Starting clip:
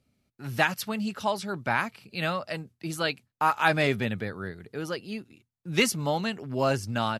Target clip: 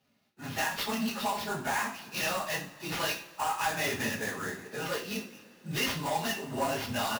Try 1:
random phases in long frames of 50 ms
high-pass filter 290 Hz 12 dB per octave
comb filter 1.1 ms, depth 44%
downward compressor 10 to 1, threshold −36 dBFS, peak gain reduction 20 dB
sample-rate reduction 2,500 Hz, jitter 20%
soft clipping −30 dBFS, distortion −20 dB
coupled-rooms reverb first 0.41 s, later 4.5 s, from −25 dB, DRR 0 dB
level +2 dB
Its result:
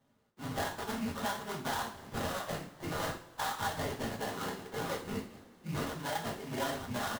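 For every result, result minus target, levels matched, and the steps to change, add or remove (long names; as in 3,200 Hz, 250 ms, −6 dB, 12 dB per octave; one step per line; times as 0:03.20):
downward compressor: peak gain reduction +7.5 dB; sample-rate reduction: distortion +9 dB
change: downward compressor 10 to 1, threshold −27.5 dBFS, peak gain reduction 12 dB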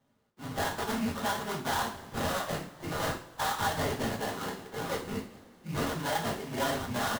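sample-rate reduction: distortion +11 dB
change: sample-rate reduction 8,500 Hz, jitter 20%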